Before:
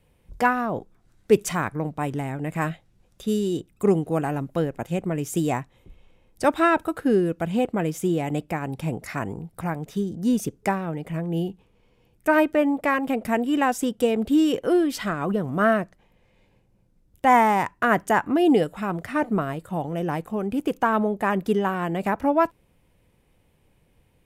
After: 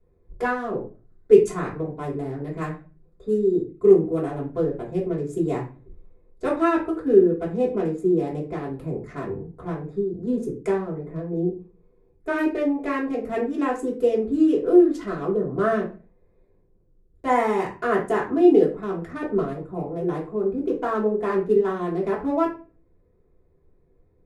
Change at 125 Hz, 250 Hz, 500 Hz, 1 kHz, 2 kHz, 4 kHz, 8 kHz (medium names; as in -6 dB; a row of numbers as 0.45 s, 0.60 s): -3.0 dB, 0.0 dB, +4.0 dB, -5.0 dB, -6.0 dB, no reading, under -10 dB